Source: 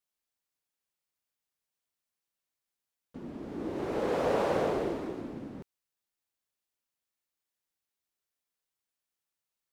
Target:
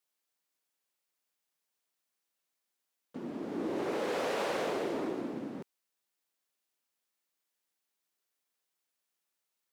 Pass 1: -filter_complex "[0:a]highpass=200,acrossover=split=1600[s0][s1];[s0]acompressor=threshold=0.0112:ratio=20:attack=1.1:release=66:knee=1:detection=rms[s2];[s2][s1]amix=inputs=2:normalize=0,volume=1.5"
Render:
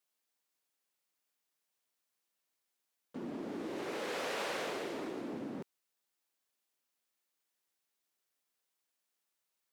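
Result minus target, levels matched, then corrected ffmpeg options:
compression: peak gain reduction +6.5 dB
-filter_complex "[0:a]highpass=200,acrossover=split=1600[s0][s1];[s0]acompressor=threshold=0.0251:ratio=20:attack=1.1:release=66:knee=1:detection=rms[s2];[s2][s1]amix=inputs=2:normalize=0,volume=1.5"

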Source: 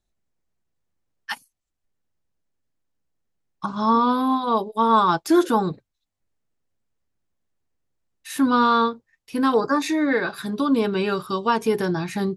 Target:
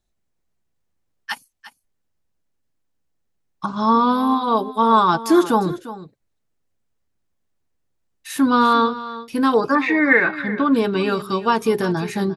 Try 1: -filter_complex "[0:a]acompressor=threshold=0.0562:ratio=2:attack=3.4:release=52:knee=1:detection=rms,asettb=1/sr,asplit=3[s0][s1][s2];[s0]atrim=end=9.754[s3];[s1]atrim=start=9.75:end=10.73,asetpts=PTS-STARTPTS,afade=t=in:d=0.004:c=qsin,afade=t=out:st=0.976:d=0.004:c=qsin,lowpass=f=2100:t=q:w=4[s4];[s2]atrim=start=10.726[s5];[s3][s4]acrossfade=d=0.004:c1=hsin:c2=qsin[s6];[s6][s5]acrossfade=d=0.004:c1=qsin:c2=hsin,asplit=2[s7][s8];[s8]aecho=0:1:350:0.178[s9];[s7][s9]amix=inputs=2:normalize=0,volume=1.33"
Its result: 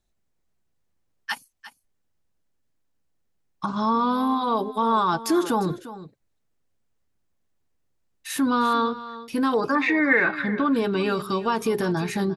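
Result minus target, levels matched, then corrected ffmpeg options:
compression: peak gain reduction +8 dB
-filter_complex "[0:a]asettb=1/sr,asplit=3[s0][s1][s2];[s0]atrim=end=9.754[s3];[s1]atrim=start=9.75:end=10.73,asetpts=PTS-STARTPTS,afade=t=in:d=0.004:c=qsin,afade=t=out:st=0.976:d=0.004:c=qsin,lowpass=f=2100:t=q:w=4[s4];[s2]atrim=start=10.726[s5];[s3][s4]acrossfade=d=0.004:c1=hsin:c2=qsin[s6];[s6][s5]acrossfade=d=0.004:c1=qsin:c2=hsin,asplit=2[s7][s8];[s8]aecho=0:1:350:0.178[s9];[s7][s9]amix=inputs=2:normalize=0,volume=1.33"

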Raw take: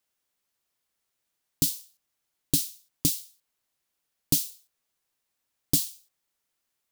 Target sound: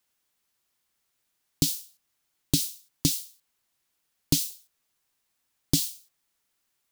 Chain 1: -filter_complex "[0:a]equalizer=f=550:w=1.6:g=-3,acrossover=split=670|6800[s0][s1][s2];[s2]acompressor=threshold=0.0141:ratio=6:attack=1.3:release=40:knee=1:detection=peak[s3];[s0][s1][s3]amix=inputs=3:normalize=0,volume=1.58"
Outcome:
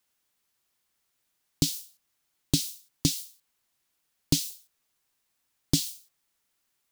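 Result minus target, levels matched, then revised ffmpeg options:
compression: peak gain reduction +6.5 dB
-filter_complex "[0:a]equalizer=f=550:w=1.6:g=-3,acrossover=split=670|6800[s0][s1][s2];[s2]acompressor=threshold=0.0335:ratio=6:attack=1.3:release=40:knee=1:detection=peak[s3];[s0][s1][s3]amix=inputs=3:normalize=0,volume=1.58"

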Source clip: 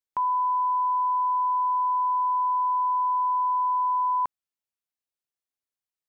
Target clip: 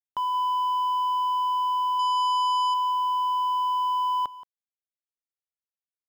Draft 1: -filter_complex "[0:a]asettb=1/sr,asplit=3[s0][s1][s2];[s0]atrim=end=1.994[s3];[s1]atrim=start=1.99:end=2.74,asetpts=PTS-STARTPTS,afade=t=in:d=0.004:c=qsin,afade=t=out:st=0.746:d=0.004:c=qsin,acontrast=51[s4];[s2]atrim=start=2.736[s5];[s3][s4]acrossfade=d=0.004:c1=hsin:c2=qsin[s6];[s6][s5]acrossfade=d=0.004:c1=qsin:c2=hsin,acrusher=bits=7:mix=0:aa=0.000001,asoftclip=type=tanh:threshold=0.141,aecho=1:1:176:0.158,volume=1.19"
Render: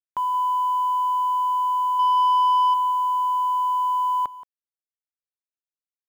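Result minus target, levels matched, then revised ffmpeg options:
saturation: distortion -8 dB
-filter_complex "[0:a]asettb=1/sr,asplit=3[s0][s1][s2];[s0]atrim=end=1.994[s3];[s1]atrim=start=1.99:end=2.74,asetpts=PTS-STARTPTS,afade=t=in:d=0.004:c=qsin,afade=t=out:st=0.746:d=0.004:c=qsin,acontrast=51[s4];[s2]atrim=start=2.736[s5];[s3][s4]acrossfade=d=0.004:c1=hsin:c2=qsin[s6];[s6][s5]acrossfade=d=0.004:c1=qsin:c2=hsin,acrusher=bits=7:mix=0:aa=0.000001,asoftclip=type=tanh:threshold=0.0562,aecho=1:1:176:0.158,volume=1.19"

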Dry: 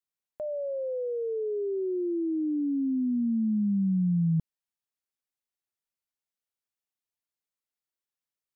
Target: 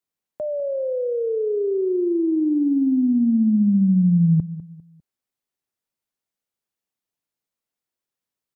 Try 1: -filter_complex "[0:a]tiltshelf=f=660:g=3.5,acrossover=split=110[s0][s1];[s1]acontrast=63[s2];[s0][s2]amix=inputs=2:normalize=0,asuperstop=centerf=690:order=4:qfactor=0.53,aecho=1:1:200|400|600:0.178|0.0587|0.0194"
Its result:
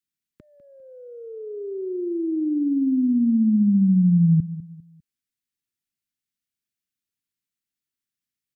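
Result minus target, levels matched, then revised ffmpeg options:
500 Hz band -10.0 dB
-filter_complex "[0:a]tiltshelf=f=660:g=3.5,acrossover=split=110[s0][s1];[s1]acontrast=63[s2];[s0][s2]amix=inputs=2:normalize=0,aecho=1:1:200|400|600:0.178|0.0587|0.0194"

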